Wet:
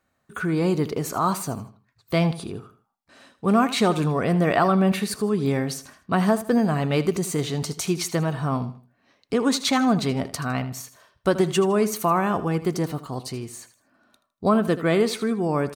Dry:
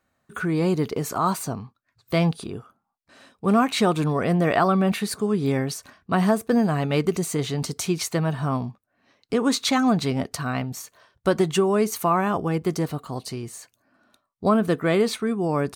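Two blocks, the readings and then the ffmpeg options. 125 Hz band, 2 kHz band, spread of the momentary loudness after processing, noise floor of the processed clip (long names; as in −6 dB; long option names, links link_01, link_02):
0.0 dB, 0.0 dB, 12 LU, −72 dBFS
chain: -af "aecho=1:1:79|158|237:0.188|0.0622|0.0205"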